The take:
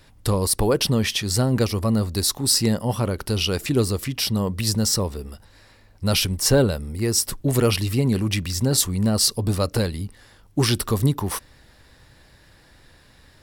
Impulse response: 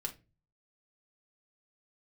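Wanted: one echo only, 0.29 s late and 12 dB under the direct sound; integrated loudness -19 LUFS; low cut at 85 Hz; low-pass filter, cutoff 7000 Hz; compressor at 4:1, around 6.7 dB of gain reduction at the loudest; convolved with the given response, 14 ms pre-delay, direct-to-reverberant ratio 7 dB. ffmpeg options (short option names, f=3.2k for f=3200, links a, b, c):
-filter_complex "[0:a]highpass=85,lowpass=7k,acompressor=threshold=-22dB:ratio=4,aecho=1:1:290:0.251,asplit=2[a][b];[1:a]atrim=start_sample=2205,adelay=14[c];[b][c]afir=irnorm=-1:irlink=0,volume=-7dB[d];[a][d]amix=inputs=2:normalize=0,volume=6.5dB"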